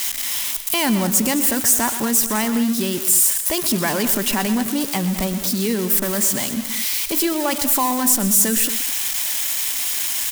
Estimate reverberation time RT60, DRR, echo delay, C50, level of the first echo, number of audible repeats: no reverb, no reverb, 125 ms, no reverb, -12.5 dB, 2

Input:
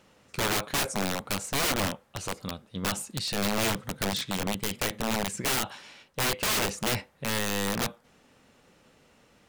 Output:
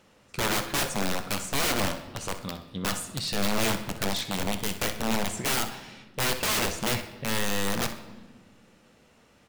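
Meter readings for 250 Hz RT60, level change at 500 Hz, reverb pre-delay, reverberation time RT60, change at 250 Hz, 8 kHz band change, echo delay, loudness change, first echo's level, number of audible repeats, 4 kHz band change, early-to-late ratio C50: 2.3 s, +0.5 dB, 6 ms, 1.4 s, +1.0 dB, +0.5 dB, 63 ms, +0.5 dB, -13.0 dB, 1, +0.5 dB, 9.5 dB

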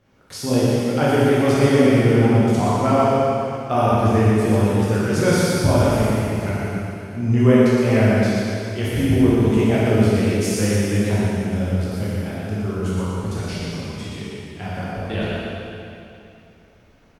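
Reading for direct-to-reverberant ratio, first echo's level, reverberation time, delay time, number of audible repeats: -9.5 dB, -3.0 dB, 2.7 s, 120 ms, 1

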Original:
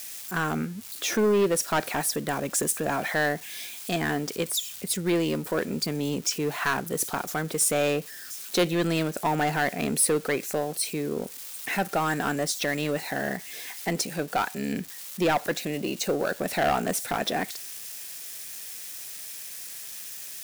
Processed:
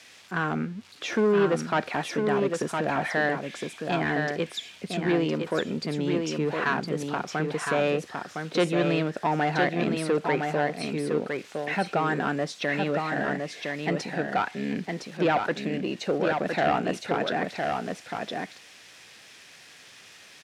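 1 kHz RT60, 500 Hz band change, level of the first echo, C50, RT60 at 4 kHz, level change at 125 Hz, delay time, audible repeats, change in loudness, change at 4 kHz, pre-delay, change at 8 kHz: no reverb, +1.5 dB, -4.5 dB, no reverb, no reverb, +1.5 dB, 1011 ms, 1, 0.0 dB, -3.5 dB, no reverb, -15.0 dB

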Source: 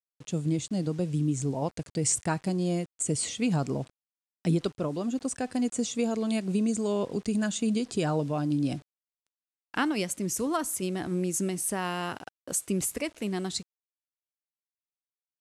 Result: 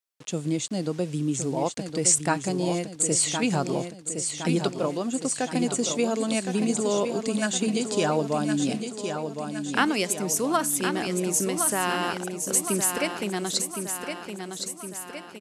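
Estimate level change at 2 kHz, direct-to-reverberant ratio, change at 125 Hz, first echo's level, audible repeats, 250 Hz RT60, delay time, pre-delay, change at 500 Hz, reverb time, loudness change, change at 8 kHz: +7.5 dB, no reverb, -1.0 dB, -7.0 dB, 6, no reverb, 1064 ms, no reverb, +5.0 dB, no reverb, +3.5 dB, +7.5 dB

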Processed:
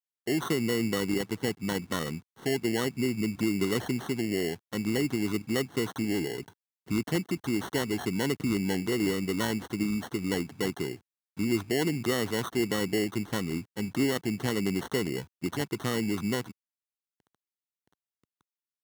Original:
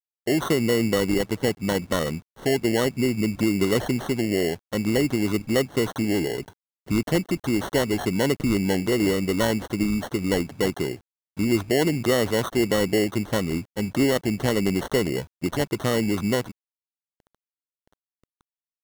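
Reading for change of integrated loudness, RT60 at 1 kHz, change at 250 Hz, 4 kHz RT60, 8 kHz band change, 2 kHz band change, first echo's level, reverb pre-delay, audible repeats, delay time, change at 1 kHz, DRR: -6.0 dB, no reverb, -5.5 dB, no reverb, -5.0 dB, -5.0 dB, no echo, no reverb, no echo, no echo, -6.5 dB, no reverb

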